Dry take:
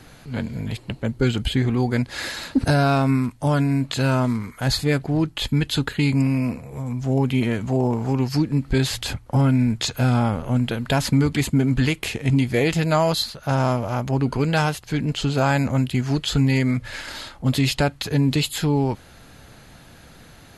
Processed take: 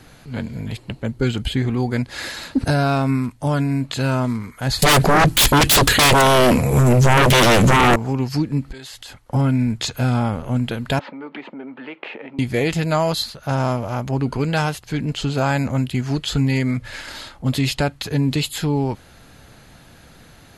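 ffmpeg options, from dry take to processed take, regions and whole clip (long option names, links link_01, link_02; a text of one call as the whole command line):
ffmpeg -i in.wav -filter_complex "[0:a]asettb=1/sr,asplit=3[link_01][link_02][link_03];[link_01]atrim=end=4.824[link_04];[link_02]atrim=start=4.82:end=7.96,asetpts=PTS-STARTPTS,afade=type=in:duration=0.004:curve=qsin,afade=type=out:start_time=3.136:duration=0.004:curve=qsin,highshelf=frequency=6700:gain=8.5,aeval=exprs='0.335*sin(PI/2*6.31*val(0)/0.335)':channel_layout=same[link_05];[link_03]atrim=start=7.956[link_06];[link_04][link_05]acrossfade=duration=0.004:curve1=hsin:curve2=qsin[link_07];[link_07][link_06]acrossfade=duration=0.004:curve1=qsin:curve2=hsin,asettb=1/sr,asplit=3[link_08][link_09][link_10];[link_08]atrim=end=8.724[link_11];[link_09]atrim=start=8.72:end=9.3,asetpts=PTS-STARTPTS,afade=type=in:duration=0.004:curve=qsin,afade=type=out:start_time=0.576:duration=0.004:curve=qsin,equalizer=frequency=93:width=0.32:gain=-14,bandreject=frequency=2400:width=13,acompressor=threshold=-34dB:ratio=6:attack=3.2:release=140:knee=1:detection=peak[link_12];[link_10]atrim=start=9.296[link_13];[link_11][link_12]acrossfade=duration=0.004:curve1=hsin:curve2=qsin[link_14];[link_14][link_13]acrossfade=duration=0.004:curve1=qsin:curve2=hsin,asettb=1/sr,asplit=3[link_15][link_16][link_17];[link_15]atrim=end=10.994[link_18];[link_16]atrim=start=10.99:end=12.39,asetpts=PTS-STARTPTS,afade=type=in:duration=0.004:curve=qsin,afade=type=out:start_time=1.396:duration=0.004:curve=qsin,acompressor=threshold=-25dB:ratio=12:attack=3.2:release=140:knee=1:detection=peak,highpass=frequency=270:width=0.5412,highpass=frequency=270:width=1.3066,equalizer=frequency=560:width_type=q:width=4:gain=6,equalizer=frequency=870:width_type=q:width=4:gain=8,equalizer=frequency=1300:width_type=q:width=4:gain=5,lowpass=frequency=2800:width=0.5412,lowpass=frequency=2800:width=1.3066[link_19];[link_17]atrim=start=12.386[link_20];[link_18][link_19]acrossfade=duration=0.004:curve1=hsin:curve2=qsin[link_21];[link_21][link_20]acrossfade=duration=0.004:curve1=qsin:curve2=hsin" out.wav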